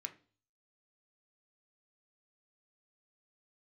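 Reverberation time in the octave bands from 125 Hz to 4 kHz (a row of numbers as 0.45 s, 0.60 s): 0.65 s, 0.50 s, 0.45 s, 0.35 s, 0.35 s, 0.45 s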